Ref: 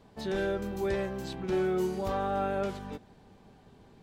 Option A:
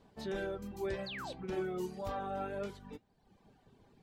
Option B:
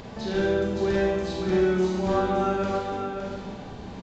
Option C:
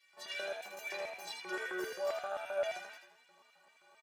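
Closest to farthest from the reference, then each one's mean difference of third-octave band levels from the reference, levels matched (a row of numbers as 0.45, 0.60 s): A, B, C; 2.5, 6.0, 11.5 dB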